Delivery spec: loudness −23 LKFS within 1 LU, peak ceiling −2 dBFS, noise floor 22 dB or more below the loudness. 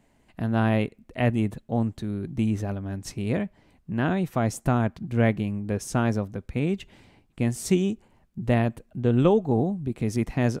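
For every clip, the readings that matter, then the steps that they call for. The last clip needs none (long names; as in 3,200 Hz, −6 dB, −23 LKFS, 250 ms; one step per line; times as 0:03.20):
integrated loudness −26.5 LKFS; sample peak −6.0 dBFS; target loudness −23.0 LKFS
→ level +3.5 dB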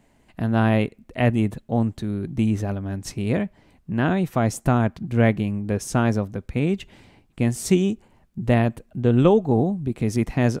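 integrated loudness −23.0 LKFS; sample peak −2.5 dBFS; background noise floor −60 dBFS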